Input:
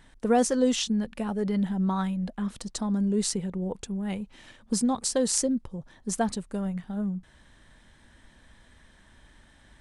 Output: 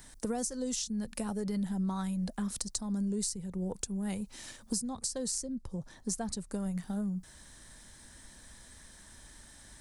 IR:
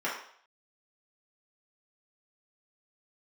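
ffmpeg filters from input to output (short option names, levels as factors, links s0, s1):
-filter_complex "[0:a]asettb=1/sr,asplit=3[s0][s1][s2];[s0]atrim=end=4.894[s3];[s1]atrim=start=4.89:end=6.6,asetpts=PTS-STARTPTS,afade=t=in:d=0.004:c=qsin,afade=t=out:st=1.706:d=0.004:c=qsin,highshelf=f=6100:g=-8.5[s4];[s2]atrim=start=6.596[s5];[s3][s4]acrossfade=d=0.004:c1=hsin:c2=qsin[s6];[s6][s5]acrossfade=d=0.004:c1=qsin:c2=hsin,aexciter=amount=5.2:drive=4.4:freq=4400,acrossover=split=130[s7][s8];[s8]acompressor=threshold=0.0224:ratio=10[s9];[s7][s9]amix=inputs=2:normalize=0"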